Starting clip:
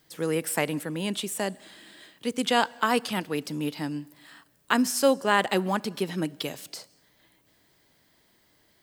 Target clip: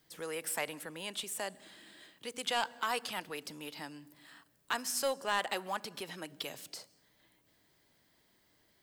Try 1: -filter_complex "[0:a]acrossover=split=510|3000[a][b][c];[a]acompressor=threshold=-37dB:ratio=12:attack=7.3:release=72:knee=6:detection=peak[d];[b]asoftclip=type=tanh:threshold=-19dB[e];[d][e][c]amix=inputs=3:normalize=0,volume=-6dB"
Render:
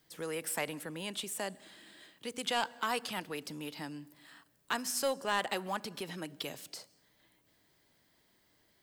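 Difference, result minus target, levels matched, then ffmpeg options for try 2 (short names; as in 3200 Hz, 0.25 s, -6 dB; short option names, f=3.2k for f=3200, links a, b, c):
compressor: peak gain reduction -7.5 dB
-filter_complex "[0:a]acrossover=split=510|3000[a][b][c];[a]acompressor=threshold=-45dB:ratio=12:attack=7.3:release=72:knee=6:detection=peak[d];[b]asoftclip=type=tanh:threshold=-19dB[e];[d][e][c]amix=inputs=3:normalize=0,volume=-6dB"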